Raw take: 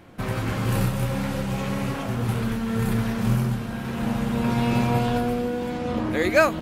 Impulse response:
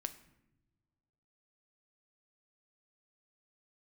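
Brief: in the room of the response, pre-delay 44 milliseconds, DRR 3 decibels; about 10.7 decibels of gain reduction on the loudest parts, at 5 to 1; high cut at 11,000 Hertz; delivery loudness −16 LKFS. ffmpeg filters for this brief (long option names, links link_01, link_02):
-filter_complex "[0:a]lowpass=11000,acompressor=threshold=-24dB:ratio=5,asplit=2[link_01][link_02];[1:a]atrim=start_sample=2205,adelay=44[link_03];[link_02][link_03]afir=irnorm=-1:irlink=0,volume=-1dB[link_04];[link_01][link_04]amix=inputs=2:normalize=0,volume=11dB"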